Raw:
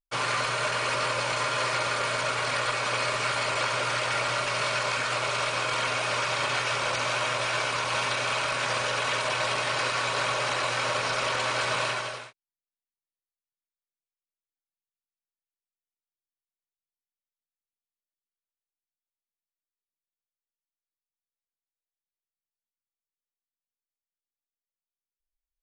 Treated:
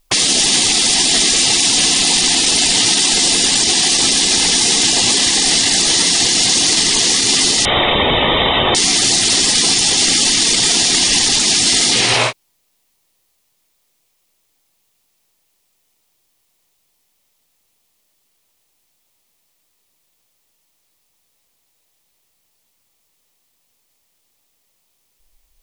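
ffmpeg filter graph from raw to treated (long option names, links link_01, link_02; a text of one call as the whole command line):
ffmpeg -i in.wav -filter_complex "[0:a]asettb=1/sr,asplit=3[link_01][link_02][link_03];[link_01]atrim=end=7.654[link_04];[link_02]atrim=start=7.65:end=8.75,asetpts=PTS-STARTPTS,afade=type=in:duration=0.004:curve=qsin,afade=type=out:start_time=1.096:duration=0.004:curve=qsin,equalizer=frequency=790:width_type=o:width=0.58:gain=-8,bandreject=frequency=2700:width=28,lowpass=frequency=3300:width_type=q:width=0.5098,lowpass=frequency=3300:width_type=q:width=0.6013,lowpass=frequency=3300:width_type=q:width=0.9,lowpass=frequency=3300:width_type=q:width=2.563,afreqshift=-3900[link_05];[link_03]atrim=start=8.746[link_06];[link_04][link_05]acrossfade=duration=0.004:curve1=hsin:curve2=qsin[link_07];[link_07][link_06]acrossfade=duration=0.004:curve1=qsin:curve2=hsin,afftfilt=real='re*lt(hypot(re,im),0.0355)':imag='im*lt(hypot(re,im),0.0355)':win_size=1024:overlap=0.75,equalizer=frequency=1500:width=2.4:gain=-7.5,alimiter=level_in=34.5dB:limit=-1dB:release=50:level=0:latency=1,volume=-3dB" out.wav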